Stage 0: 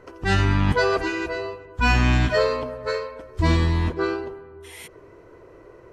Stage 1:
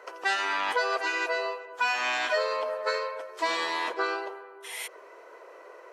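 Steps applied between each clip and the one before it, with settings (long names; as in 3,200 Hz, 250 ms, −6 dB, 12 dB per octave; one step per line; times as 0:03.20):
high-pass filter 540 Hz 24 dB per octave
downward compressor 5 to 1, threshold −29 dBFS, peak gain reduction 11 dB
level +4.5 dB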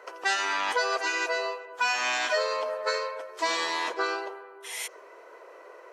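dynamic equaliser 6,300 Hz, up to +8 dB, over −54 dBFS, Q 1.6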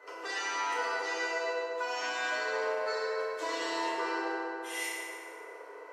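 downward compressor, threshold −30 dBFS, peak gain reduction 9 dB
tuned comb filter 400 Hz, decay 0.19 s, harmonics odd, mix 70%
feedback delay network reverb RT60 3.1 s, high-frequency decay 0.45×, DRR −9 dB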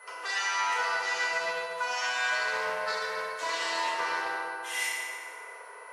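high-pass filter 840 Hz 12 dB per octave
steady tone 10,000 Hz −63 dBFS
highs frequency-modulated by the lows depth 0.11 ms
level +5.5 dB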